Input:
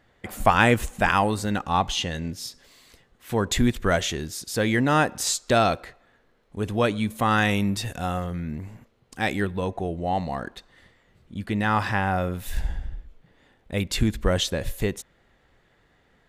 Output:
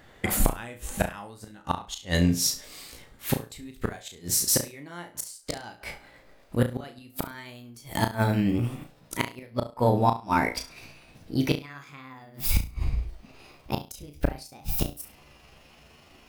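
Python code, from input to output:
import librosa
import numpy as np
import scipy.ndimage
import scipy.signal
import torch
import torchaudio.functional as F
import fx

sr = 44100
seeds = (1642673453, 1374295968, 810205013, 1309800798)

y = fx.pitch_glide(x, sr, semitones=7.0, runs='starting unshifted')
y = fx.high_shelf(y, sr, hz=8200.0, db=7.5)
y = fx.gate_flip(y, sr, shuts_db=-18.0, range_db=-29)
y = fx.room_flutter(y, sr, wall_m=5.9, rt60_s=0.28)
y = y * 10.0 ** (8.0 / 20.0)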